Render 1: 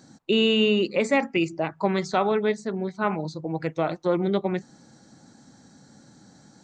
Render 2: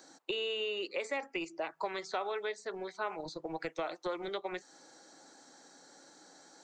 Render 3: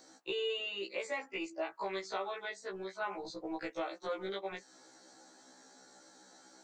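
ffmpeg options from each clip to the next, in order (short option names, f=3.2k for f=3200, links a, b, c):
-filter_complex "[0:a]equalizer=f=220:w=4.9:g=-14,acrossover=split=1000|4200[a][b][c];[a]acompressor=threshold=-37dB:ratio=4[d];[b]acompressor=threshold=-41dB:ratio=4[e];[c]acompressor=threshold=-53dB:ratio=4[f];[d][e][f]amix=inputs=3:normalize=0,acrossover=split=280|1300[g][h][i];[g]acrusher=bits=5:mix=0:aa=0.5[j];[j][h][i]amix=inputs=3:normalize=0"
-af "afftfilt=real='re*1.73*eq(mod(b,3),0)':imag='im*1.73*eq(mod(b,3),0)':win_size=2048:overlap=0.75,volume=1dB"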